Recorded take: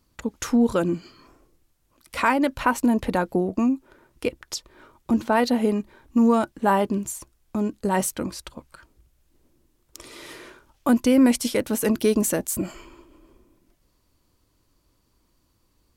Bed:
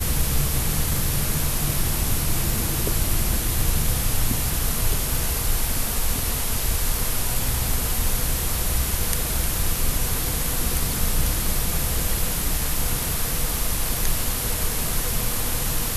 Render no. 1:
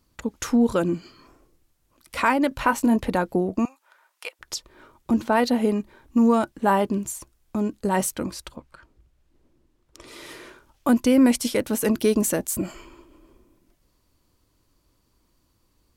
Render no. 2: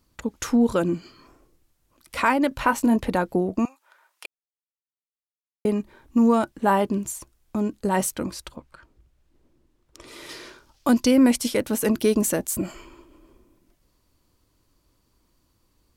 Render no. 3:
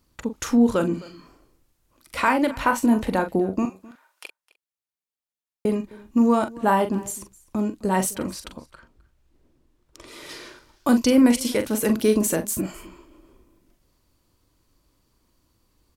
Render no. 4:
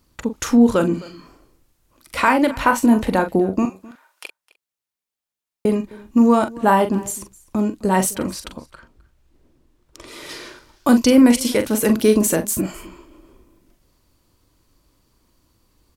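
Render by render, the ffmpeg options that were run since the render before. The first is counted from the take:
ffmpeg -i in.wav -filter_complex "[0:a]asettb=1/sr,asplit=3[link_01][link_02][link_03];[link_01]atrim=end=2.494[link_04];[link_02]atrim=start=2.49:end=2.96,asetpts=PTS-STARTPTS,afade=type=in:duration=0.004:curve=qsin,afade=type=out:start_time=0.466:duration=0.004:curve=qsin,asplit=2[link_05][link_06];[link_06]adelay=22,volume=-9dB[link_07];[link_05][link_07]amix=inputs=2:normalize=0,atrim=end_sample=20727[link_08];[link_03]atrim=start=2.956[link_09];[link_04][link_08]acrossfade=duration=0.004:curve1=hsin:curve2=qsin[link_10];[link_10][link_09]acrossfade=duration=0.004:curve1=qsin:curve2=hsin,asettb=1/sr,asplit=3[link_11][link_12][link_13];[link_11]atrim=end=3.654[link_14];[link_12]atrim=start=3.65:end=4.39,asetpts=PTS-STARTPTS,afade=type=in:duration=0.004:curve=qsin,afade=type=out:start_time=0.736:duration=0.004:curve=qsin,highpass=frequency=760:width=0.5412,highpass=frequency=760:width=1.3066[link_15];[link_13]atrim=start=4.386[link_16];[link_14][link_15]acrossfade=duration=0.004:curve1=hsin:curve2=qsin[link_17];[link_17][link_16]acrossfade=duration=0.004:curve1=qsin:curve2=hsin,asettb=1/sr,asplit=3[link_18][link_19][link_20];[link_18]atrim=end=8.564[link_21];[link_19]atrim=start=8.56:end=10.08,asetpts=PTS-STARTPTS,afade=type=in:duration=0.004:curve=qsin,afade=type=out:start_time=1.516:duration=0.004:curve=qsin,aemphasis=mode=reproduction:type=50kf[link_22];[link_20]atrim=start=10.076[link_23];[link_21][link_22]acrossfade=duration=0.004:curve1=hsin:curve2=qsin[link_24];[link_24][link_23]acrossfade=duration=0.004:curve1=qsin:curve2=hsin" out.wav
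ffmpeg -i in.wav -filter_complex "[0:a]asettb=1/sr,asplit=3[link_01][link_02][link_03];[link_01]atrim=end=10.294[link_04];[link_02]atrim=start=10.29:end=11.11,asetpts=PTS-STARTPTS,afade=type=in:duration=0.004:curve=qsin,afade=type=out:start_time=0.816:duration=0.004:curve=qsin,equalizer=frequency=4900:width_type=o:width=0.93:gain=9.5[link_05];[link_03]atrim=start=11.106[link_06];[link_04][link_05]acrossfade=duration=0.004:curve1=hsin:curve2=qsin[link_07];[link_07][link_06]acrossfade=duration=0.004:curve1=qsin:curve2=hsin,asplit=3[link_08][link_09][link_10];[link_08]atrim=end=4.26,asetpts=PTS-STARTPTS,afade=type=out:start_time=4.256:duration=0.004:curve=hsin[link_11];[link_09]atrim=start=4.26:end=5.65,asetpts=PTS-STARTPTS,volume=0[link_12];[link_10]atrim=start=5.65,asetpts=PTS-STARTPTS,afade=type=in:duration=0.004:curve=hsin[link_13];[link_11][link_12][link_13]concat=n=3:v=0:a=1" out.wav
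ffmpeg -i in.wav -filter_complex "[0:a]asplit=2[link_01][link_02];[link_02]adelay=42,volume=-9dB[link_03];[link_01][link_03]amix=inputs=2:normalize=0,aecho=1:1:259:0.0841" out.wav
ffmpeg -i in.wav -af "volume=4.5dB,alimiter=limit=-3dB:level=0:latency=1" out.wav

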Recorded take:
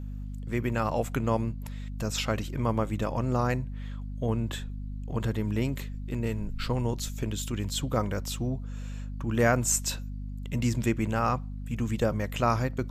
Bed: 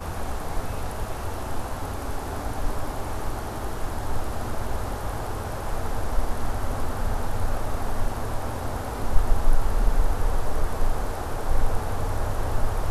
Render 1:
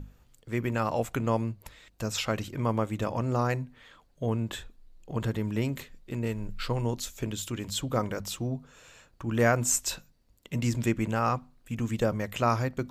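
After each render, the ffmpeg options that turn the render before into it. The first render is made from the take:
ffmpeg -i in.wav -af "bandreject=frequency=50:width_type=h:width=6,bandreject=frequency=100:width_type=h:width=6,bandreject=frequency=150:width_type=h:width=6,bandreject=frequency=200:width_type=h:width=6,bandreject=frequency=250:width_type=h:width=6" out.wav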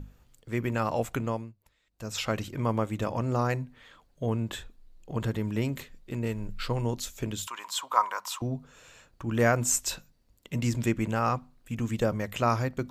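ffmpeg -i in.wav -filter_complex "[0:a]asettb=1/sr,asplit=3[link_01][link_02][link_03];[link_01]atrim=end=7.474[link_04];[link_02]atrim=start=7.47:end=8.42,asetpts=PTS-STARTPTS,afade=type=in:duration=0.004:curve=qsin,afade=type=out:start_time=0.946:duration=0.004:curve=qsin,highpass=frequency=1000:width_type=q:width=8.2[link_05];[link_03]atrim=start=8.416[link_06];[link_04][link_05]acrossfade=duration=0.004:curve1=hsin:curve2=qsin[link_07];[link_07][link_06]acrossfade=duration=0.004:curve1=qsin:curve2=hsin,asplit=3[link_08][link_09][link_10];[link_08]atrim=end=1.53,asetpts=PTS-STARTPTS,afade=type=out:start_time=1.15:duration=0.38:silence=0.11885[link_11];[link_09]atrim=start=1.53:end=1.88,asetpts=PTS-STARTPTS,volume=-18.5dB[link_12];[link_10]atrim=start=1.88,asetpts=PTS-STARTPTS,afade=type=in:duration=0.38:silence=0.11885[link_13];[link_11][link_12][link_13]concat=n=3:v=0:a=1" out.wav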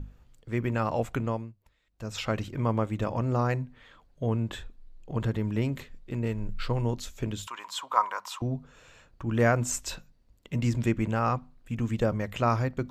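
ffmpeg -i in.wav -af "lowpass=frequency=4000:poles=1,lowshelf=frequency=94:gain=5" out.wav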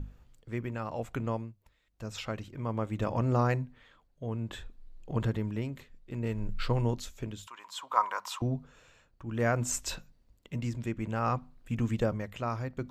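ffmpeg -i in.wav -af "tremolo=f=0.6:d=0.63" out.wav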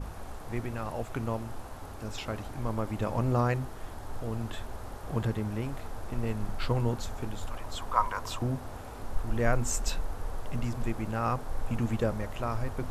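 ffmpeg -i in.wav -i bed.wav -filter_complex "[1:a]volume=-12dB[link_01];[0:a][link_01]amix=inputs=2:normalize=0" out.wav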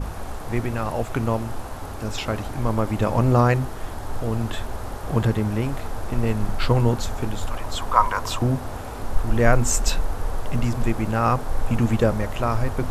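ffmpeg -i in.wav -af "volume=9.5dB,alimiter=limit=-1dB:level=0:latency=1" out.wav

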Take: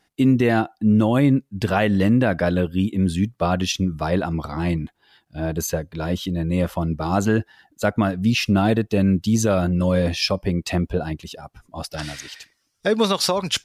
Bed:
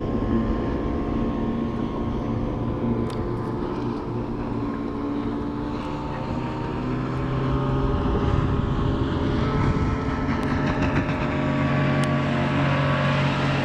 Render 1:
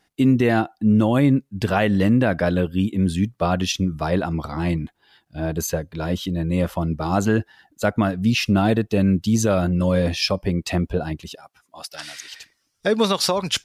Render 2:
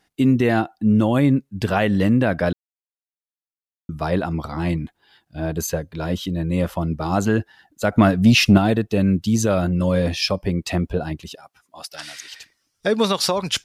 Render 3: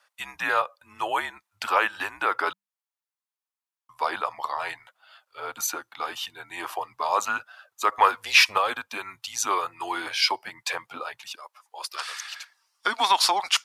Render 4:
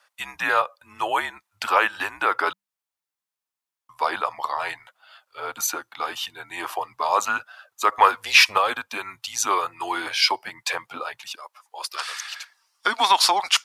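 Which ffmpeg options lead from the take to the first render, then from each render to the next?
ffmpeg -i in.wav -filter_complex "[0:a]asettb=1/sr,asplit=3[link_01][link_02][link_03];[link_01]atrim=end=11.354[link_04];[link_02]atrim=start=11.35:end=12.32,asetpts=PTS-STARTPTS,afade=type=in:duration=0.004:curve=qsin,afade=type=out:start_time=0.966:duration=0.004:curve=qsin,highpass=frequency=1400:poles=1[link_05];[link_03]atrim=start=12.316[link_06];[link_04][link_05]acrossfade=duration=0.004:curve1=hsin:curve2=qsin[link_07];[link_07][link_06]acrossfade=duration=0.004:curve1=qsin:curve2=hsin" out.wav
ffmpeg -i in.wav -filter_complex "[0:a]asettb=1/sr,asplit=3[link_01][link_02][link_03];[link_01]atrim=end=7.924[link_04];[link_02]atrim=start=7.92:end=8.58,asetpts=PTS-STARTPTS,afade=type=in:duration=0.004:curve=qsin,afade=type=out:start_time=0.656:duration=0.004:curve=qsin,acontrast=69[link_05];[link_03]atrim=start=8.576[link_06];[link_04][link_05]acrossfade=duration=0.004:curve1=hsin:curve2=qsin[link_07];[link_07][link_06]acrossfade=duration=0.004:curve1=qsin:curve2=hsin,asplit=3[link_08][link_09][link_10];[link_08]atrim=end=2.53,asetpts=PTS-STARTPTS,afade=type=out:start_time=2.526:duration=0.004:curve=hsin[link_11];[link_09]atrim=start=2.53:end=3.89,asetpts=PTS-STARTPTS,volume=0[link_12];[link_10]atrim=start=3.89,asetpts=PTS-STARTPTS,afade=type=in:duration=0.004:curve=hsin[link_13];[link_11][link_12][link_13]concat=n=3:v=0:a=1" out.wav
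ffmpeg -i in.wav -af "afreqshift=-200,highpass=frequency=940:width_type=q:width=2.3" out.wav
ffmpeg -i in.wav -af "volume=3dB,alimiter=limit=-1dB:level=0:latency=1" out.wav

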